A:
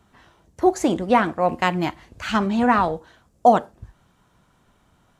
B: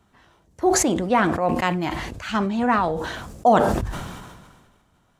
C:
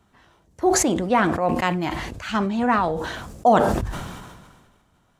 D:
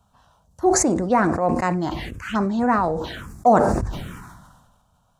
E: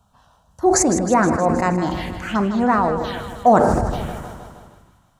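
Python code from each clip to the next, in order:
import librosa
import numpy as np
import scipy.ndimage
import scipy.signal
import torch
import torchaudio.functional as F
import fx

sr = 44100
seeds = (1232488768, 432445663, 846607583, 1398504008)

y1 = fx.sustainer(x, sr, db_per_s=37.0)
y1 = y1 * librosa.db_to_amplitude(-3.0)
y2 = y1
y3 = fx.env_phaser(y2, sr, low_hz=340.0, high_hz=3200.0, full_db=-19.5)
y3 = y3 * librosa.db_to_amplitude(1.5)
y4 = fx.echo_feedback(y3, sr, ms=157, feedback_pct=60, wet_db=-10.5)
y4 = y4 * librosa.db_to_amplitude(2.0)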